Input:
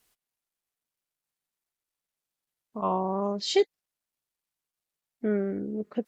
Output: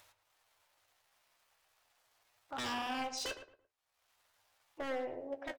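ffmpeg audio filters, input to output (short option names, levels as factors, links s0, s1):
-filter_complex "[0:a]lowpass=f=2700:p=1,lowshelf=f=370:t=q:w=1.5:g=-10.5,aeval=exprs='0.0355*(abs(mod(val(0)/0.0355+3,4)-2)-1)':c=same,acompressor=mode=upward:threshold=0.00398:ratio=2.5,asetrate=48000,aresample=44100,flanger=delay=9.7:depth=8.2:regen=-46:speed=0.41:shape=sinusoidal,asetrate=52444,aresample=44100,atempo=0.840896,equalizer=f=100:t=o:w=0.33:g=12,equalizer=f=200:t=o:w=0.33:g=-8,equalizer=f=315:t=o:w=0.33:g=4,asplit=2[s0][s1];[s1]adelay=112,lowpass=f=1700:p=1,volume=0.335,asplit=2[s2][s3];[s3]adelay=112,lowpass=f=1700:p=1,volume=0.3,asplit=2[s4][s5];[s5]adelay=112,lowpass=f=1700:p=1,volume=0.3[s6];[s2][s4][s6]amix=inputs=3:normalize=0[s7];[s0][s7]amix=inputs=2:normalize=0"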